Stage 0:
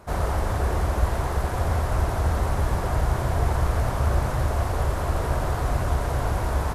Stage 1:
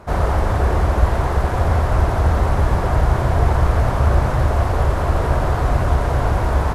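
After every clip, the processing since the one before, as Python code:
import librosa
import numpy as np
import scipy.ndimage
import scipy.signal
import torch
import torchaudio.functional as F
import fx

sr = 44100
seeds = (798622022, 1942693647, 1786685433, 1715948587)

y = fx.high_shelf(x, sr, hz=5700.0, db=-11.0)
y = y * librosa.db_to_amplitude(7.0)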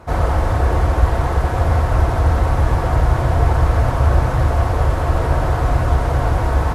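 y = fx.notch_comb(x, sr, f0_hz=200.0)
y = y * librosa.db_to_amplitude(1.5)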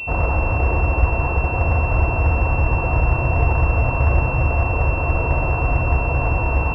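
y = fx.peak_eq(x, sr, hz=990.0, db=5.0, octaves=0.2)
y = fx.pwm(y, sr, carrier_hz=2700.0)
y = y * librosa.db_to_amplitude(-2.5)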